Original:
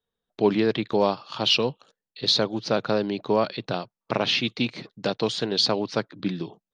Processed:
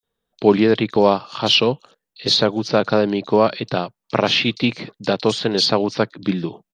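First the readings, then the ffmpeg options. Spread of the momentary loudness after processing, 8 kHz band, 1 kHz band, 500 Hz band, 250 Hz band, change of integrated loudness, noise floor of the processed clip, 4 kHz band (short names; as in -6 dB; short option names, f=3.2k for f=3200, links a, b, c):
9 LU, +5.0 dB, +7.0 dB, +7.0 dB, +7.0 dB, +6.0 dB, -82 dBFS, +5.0 dB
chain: -filter_complex "[0:a]acrossover=split=4600[a][b];[a]adelay=30[c];[c][b]amix=inputs=2:normalize=0,volume=7dB"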